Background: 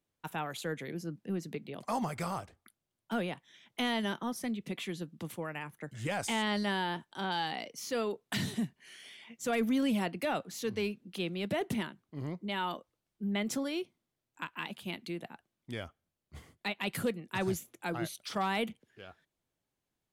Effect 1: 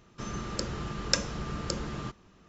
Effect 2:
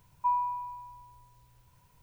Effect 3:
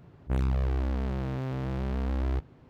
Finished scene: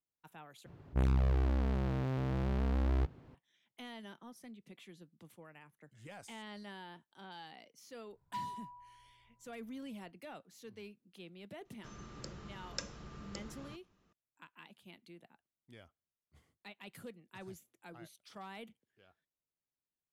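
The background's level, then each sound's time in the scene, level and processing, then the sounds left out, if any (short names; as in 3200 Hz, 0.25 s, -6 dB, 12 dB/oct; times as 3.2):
background -16.5 dB
0.66 replace with 3 -2.5 dB
8.09 add 2 -13 dB + Wiener smoothing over 15 samples
11.65 add 1 -14.5 dB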